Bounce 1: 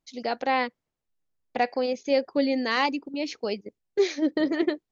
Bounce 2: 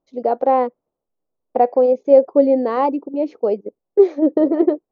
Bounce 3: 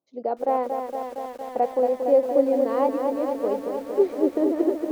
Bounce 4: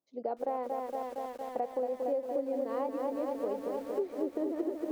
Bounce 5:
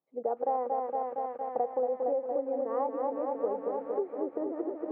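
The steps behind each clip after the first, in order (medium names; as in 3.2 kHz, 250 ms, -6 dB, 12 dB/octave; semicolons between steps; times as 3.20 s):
FFT filter 110 Hz 0 dB, 530 Hz +15 dB, 1.2 kHz +5 dB, 1.7 kHz -8 dB, 5.1 kHz -18 dB; trim -1.5 dB
high-pass 100 Hz 24 dB/octave; bit-crushed delay 231 ms, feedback 80%, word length 7-bit, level -6 dB; trim -8 dB
compression, threshold -24 dBFS, peak gain reduction 11 dB; trim -5.5 dB
cabinet simulation 130–2000 Hz, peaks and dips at 160 Hz +9 dB, 470 Hz +8 dB, 810 Hz +9 dB, 1.2 kHz +6 dB; trim -3 dB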